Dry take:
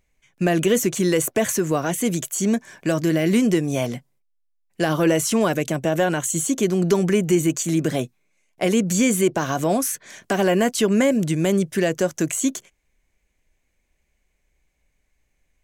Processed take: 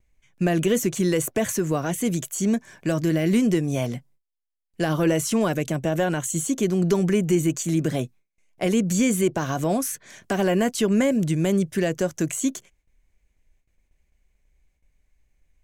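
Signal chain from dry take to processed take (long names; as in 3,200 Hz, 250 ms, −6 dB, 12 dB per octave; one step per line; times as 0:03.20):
low-shelf EQ 130 Hz +10 dB
noise gate with hold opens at −53 dBFS
level −4 dB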